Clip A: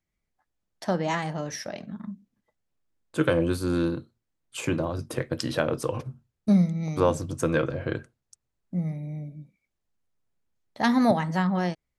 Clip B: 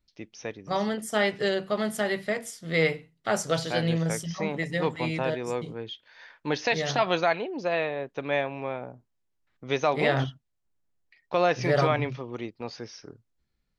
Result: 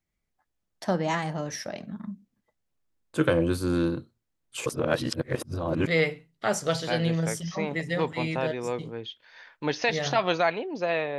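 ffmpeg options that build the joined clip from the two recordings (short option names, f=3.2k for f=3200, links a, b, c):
-filter_complex "[0:a]apad=whole_dur=11.18,atrim=end=11.18,asplit=2[a][b];[a]atrim=end=4.662[c];[b]atrim=start=4.658:end=5.872,asetpts=PTS-STARTPTS,areverse[d];[1:a]atrim=start=2.698:end=8.01[e];[c][d]acrossfade=d=0.004:c1=hsin:c2=hsin[f];[f][e]acrossfade=d=0.004:c1=hsin:c2=hsin"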